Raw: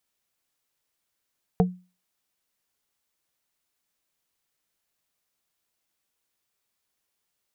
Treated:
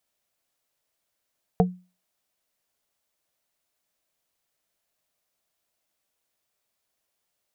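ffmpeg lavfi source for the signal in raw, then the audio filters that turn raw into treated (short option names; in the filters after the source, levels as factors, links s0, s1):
-f lavfi -i "aevalsrc='0.2*pow(10,-3*t/0.32)*sin(2*PI*181*t)+0.158*pow(10,-3*t/0.107)*sin(2*PI*452.5*t)+0.126*pow(10,-3*t/0.061)*sin(2*PI*724*t)':d=0.45:s=44100"
-af "equalizer=f=630:t=o:w=0.46:g=7.5"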